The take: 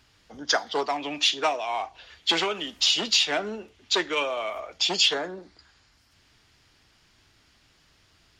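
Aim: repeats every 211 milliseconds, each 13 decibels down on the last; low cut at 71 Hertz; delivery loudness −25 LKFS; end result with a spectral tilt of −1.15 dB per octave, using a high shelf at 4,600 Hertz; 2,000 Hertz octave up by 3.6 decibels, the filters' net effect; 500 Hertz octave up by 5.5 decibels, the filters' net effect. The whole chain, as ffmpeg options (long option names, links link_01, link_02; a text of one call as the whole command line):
ffmpeg -i in.wav -af "highpass=71,equalizer=frequency=500:width_type=o:gain=7,equalizer=frequency=2000:width_type=o:gain=5.5,highshelf=frequency=4600:gain=-4,aecho=1:1:211|422|633:0.224|0.0493|0.0108,volume=-2dB" out.wav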